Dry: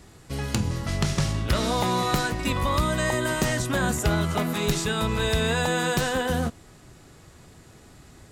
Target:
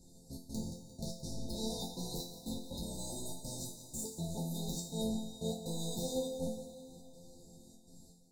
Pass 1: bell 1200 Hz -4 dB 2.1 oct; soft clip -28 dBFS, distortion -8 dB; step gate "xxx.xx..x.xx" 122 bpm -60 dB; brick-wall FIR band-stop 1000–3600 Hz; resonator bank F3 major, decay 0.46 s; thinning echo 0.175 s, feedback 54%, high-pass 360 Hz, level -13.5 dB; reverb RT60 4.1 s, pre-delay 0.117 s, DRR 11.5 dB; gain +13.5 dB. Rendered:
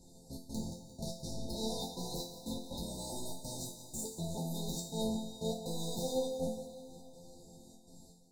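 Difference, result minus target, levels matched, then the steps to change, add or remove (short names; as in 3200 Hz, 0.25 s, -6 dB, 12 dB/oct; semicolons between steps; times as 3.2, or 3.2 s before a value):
1000 Hz band +3.5 dB
change: bell 1200 Hz -13 dB 2.1 oct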